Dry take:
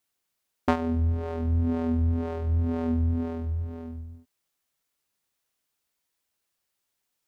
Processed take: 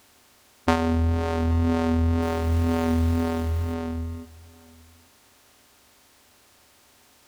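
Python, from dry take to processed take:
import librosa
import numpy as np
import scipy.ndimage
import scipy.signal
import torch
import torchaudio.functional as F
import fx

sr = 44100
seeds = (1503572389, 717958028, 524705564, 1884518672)

y = fx.bin_compress(x, sr, power=0.6)
y = fx.high_shelf(y, sr, hz=3100.0, db=11.5)
y = fx.quant_companded(y, sr, bits=6, at=(2.22, 3.74))
y = y + 10.0 ** (-22.5 / 20.0) * np.pad(y, (int(830 * sr / 1000.0), 0))[:len(y)]
y = y * librosa.db_to_amplitude(1.0)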